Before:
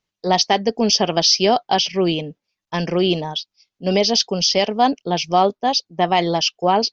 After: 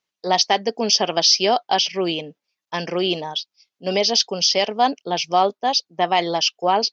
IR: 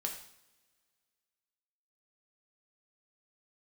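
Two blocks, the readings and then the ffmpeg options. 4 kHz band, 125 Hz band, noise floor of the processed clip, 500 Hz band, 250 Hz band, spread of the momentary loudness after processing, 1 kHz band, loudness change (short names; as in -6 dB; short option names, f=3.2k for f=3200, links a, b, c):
0.0 dB, -8.5 dB, under -85 dBFS, -2.5 dB, -6.0 dB, 10 LU, -1.0 dB, -1.5 dB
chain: -af "highpass=f=450:p=1"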